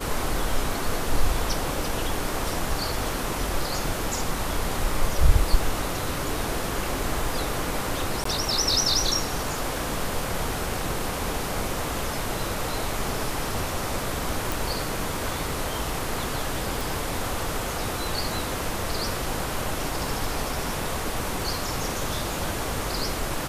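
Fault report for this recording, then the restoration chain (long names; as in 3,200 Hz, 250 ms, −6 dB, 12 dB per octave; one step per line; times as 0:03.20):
0:08.24–0:08.25: drop-out 14 ms
0:14.52: click
0:16.81: click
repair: click removal
repair the gap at 0:08.24, 14 ms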